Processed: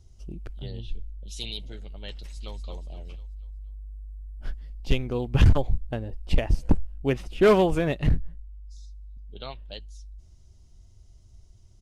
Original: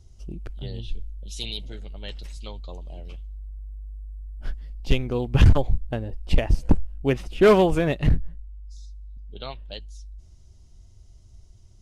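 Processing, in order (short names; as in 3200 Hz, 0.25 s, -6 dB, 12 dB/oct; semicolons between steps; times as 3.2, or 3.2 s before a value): 0.71–1.28 high shelf 4400 Hz -5.5 dB; 2.12–2.54 echo throw 0.24 s, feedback 45%, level -8 dB; gain -2.5 dB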